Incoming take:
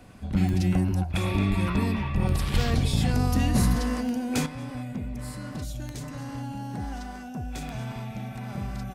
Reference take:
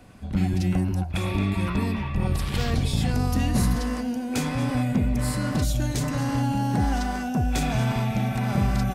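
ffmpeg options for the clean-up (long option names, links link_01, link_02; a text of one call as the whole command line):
ffmpeg -i in.wav -filter_complex "[0:a]adeclick=threshold=4,asplit=3[link_01][link_02][link_03];[link_01]afade=type=out:start_time=1.49:duration=0.02[link_04];[link_02]highpass=frequency=140:width=0.5412,highpass=frequency=140:width=1.3066,afade=type=in:start_time=1.49:duration=0.02,afade=type=out:start_time=1.61:duration=0.02[link_05];[link_03]afade=type=in:start_time=1.61:duration=0.02[link_06];[link_04][link_05][link_06]amix=inputs=3:normalize=0,asplit=3[link_07][link_08][link_09];[link_07]afade=type=out:start_time=2.53:duration=0.02[link_10];[link_08]highpass=frequency=140:width=0.5412,highpass=frequency=140:width=1.3066,afade=type=in:start_time=2.53:duration=0.02,afade=type=out:start_time=2.65:duration=0.02[link_11];[link_09]afade=type=in:start_time=2.65:duration=0.02[link_12];[link_10][link_11][link_12]amix=inputs=3:normalize=0,asetnsamples=nb_out_samples=441:pad=0,asendcmd='4.46 volume volume 10.5dB',volume=0dB" out.wav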